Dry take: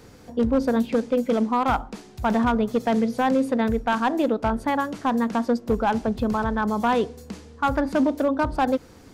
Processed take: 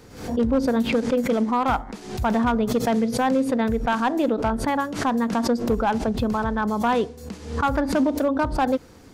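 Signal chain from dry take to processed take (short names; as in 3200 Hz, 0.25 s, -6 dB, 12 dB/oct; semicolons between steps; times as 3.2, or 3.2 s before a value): 0.68–1.94 buzz 100 Hz, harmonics 22, -56 dBFS -1 dB/oct; backwards sustainer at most 92 dB/s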